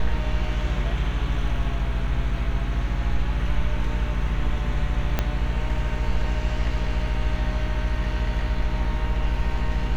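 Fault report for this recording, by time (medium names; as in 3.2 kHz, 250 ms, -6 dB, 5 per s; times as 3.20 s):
hum 60 Hz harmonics 7 -28 dBFS
5.19 s: pop -8 dBFS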